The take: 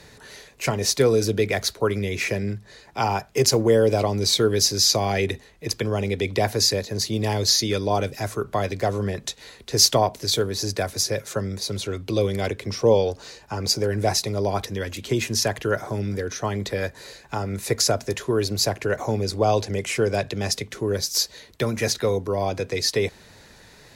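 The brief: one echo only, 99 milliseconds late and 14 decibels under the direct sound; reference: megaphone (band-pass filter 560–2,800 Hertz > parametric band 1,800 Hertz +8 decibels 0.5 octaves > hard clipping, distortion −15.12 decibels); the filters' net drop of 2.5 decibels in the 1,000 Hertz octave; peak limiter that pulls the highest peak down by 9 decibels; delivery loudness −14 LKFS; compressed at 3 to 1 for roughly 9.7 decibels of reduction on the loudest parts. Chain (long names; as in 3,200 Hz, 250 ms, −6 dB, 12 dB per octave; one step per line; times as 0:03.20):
parametric band 1,000 Hz −3 dB
downward compressor 3 to 1, threshold −26 dBFS
brickwall limiter −20 dBFS
band-pass filter 560–2,800 Hz
parametric band 1,800 Hz +8 dB 0.5 octaves
single-tap delay 99 ms −14 dB
hard clipping −28 dBFS
level +22.5 dB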